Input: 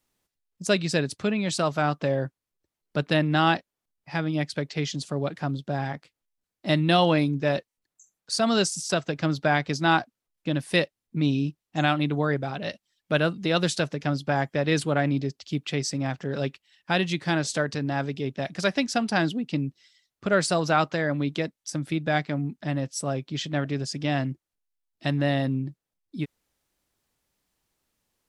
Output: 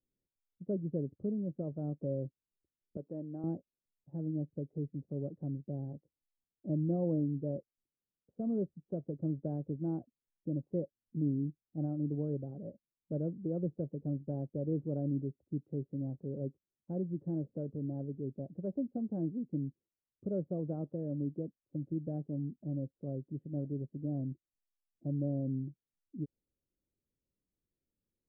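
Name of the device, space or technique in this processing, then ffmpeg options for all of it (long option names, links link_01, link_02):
under water: -filter_complex "[0:a]lowpass=frequency=430:width=0.5412,lowpass=frequency=430:width=1.3066,equalizer=frequency=550:width_type=o:width=0.23:gain=6,asettb=1/sr,asplit=3[link_01][link_02][link_03];[link_01]atrim=end=2.974[link_04];[link_02]atrim=start=2.97:end=3.44,asetpts=PTS-STARTPTS,afade=type=in:duration=0.004:curve=qsin,afade=type=out:start_time=0.466:duration=0.004:curve=qsin,highpass=frequency=630:poles=1[link_05];[link_03]atrim=start=3.436[link_06];[link_04][link_05]acrossfade=duration=0.004:curve1=hsin:curve2=qsin[link_07];[link_07][link_06]acrossfade=duration=0.004:curve1=qsin:curve2=hsin,volume=-8.5dB"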